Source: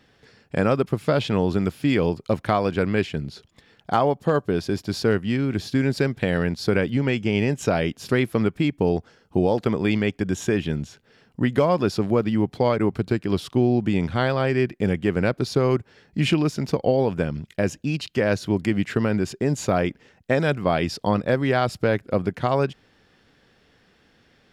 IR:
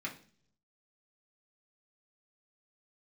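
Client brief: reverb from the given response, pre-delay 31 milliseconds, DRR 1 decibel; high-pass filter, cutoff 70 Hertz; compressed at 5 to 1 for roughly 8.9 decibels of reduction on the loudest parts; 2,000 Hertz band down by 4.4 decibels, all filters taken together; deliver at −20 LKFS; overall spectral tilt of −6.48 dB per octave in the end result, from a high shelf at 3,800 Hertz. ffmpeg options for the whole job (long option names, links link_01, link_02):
-filter_complex "[0:a]highpass=70,equalizer=frequency=2000:width_type=o:gain=-3.5,highshelf=frequency=3800:gain=-9,acompressor=threshold=-26dB:ratio=5,asplit=2[link_01][link_02];[1:a]atrim=start_sample=2205,adelay=31[link_03];[link_02][link_03]afir=irnorm=-1:irlink=0,volume=-3dB[link_04];[link_01][link_04]amix=inputs=2:normalize=0,volume=9dB"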